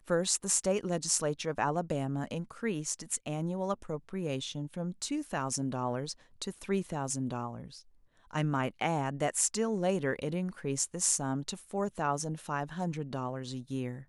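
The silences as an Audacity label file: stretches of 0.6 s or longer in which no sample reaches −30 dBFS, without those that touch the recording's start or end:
7.480000	8.350000	silence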